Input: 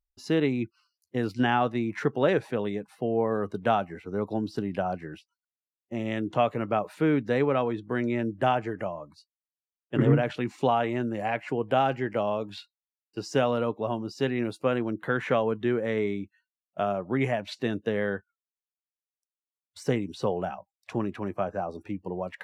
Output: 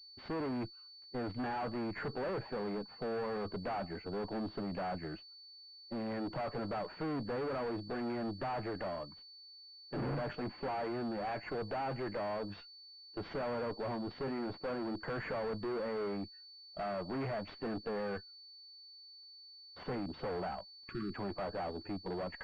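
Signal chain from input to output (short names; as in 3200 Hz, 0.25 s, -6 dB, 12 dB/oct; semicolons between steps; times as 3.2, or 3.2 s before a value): tube stage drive 36 dB, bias 0.4; spectral delete 20.78–21.15, 420–1100 Hz; pulse-width modulation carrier 4500 Hz; gain +1 dB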